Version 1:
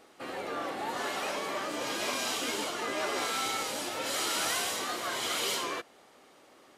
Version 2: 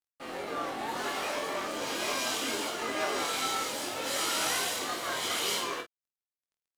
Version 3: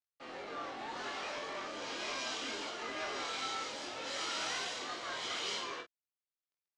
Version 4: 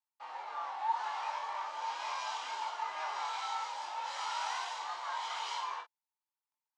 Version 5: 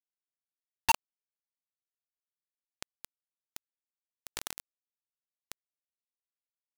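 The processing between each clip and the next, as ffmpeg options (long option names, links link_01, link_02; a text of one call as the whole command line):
ffmpeg -i in.wav -filter_complex "[0:a]aeval=exprs='sgn(val(0))*max(abs(val(0))-0.00398,0)':channel_layout=same,asplit=2[link_01][link_02];[link_02]aecho=0:1:22|49:0.631|0.398[link_03];[link_01][link_03]amix=inputs=2:normalize=0" out.wav
ffmpeg -i in.wav -filter_complex "[0:a]lowpass=frequency=6300:width=0.5412,lowpass=frequency=6300:width=1.3066,lowshelf=frequency=210:gain=-5,acrossover=split=180|1200[link_01][link_02][link_03];[link_02]asoftclip=type=tanh:threshold=-33dB[link_04];[link_01][link_04][link_03]amix=inputs=3:normalize=0,volume=-6dB" out.wav
ffmpeg -i in.wav -af "highpass=frequency=900:width_type=q:width=10,volume=-5dB" out.wav
ffmpeg -i in.wav -filter_complex "[0:a]asplit=2[link_01][link_02];[link_02]alimiter=level_in=8.5dB:limit=-24dB:level=0:latency=1,volume=-8.5dB,volume=0.5dB[link_03];[link_01][link_03]amix=inputs=2:normalize=0,acrusher=bits=3:mix=0:aa=0.000001,volume=2dB" out.wav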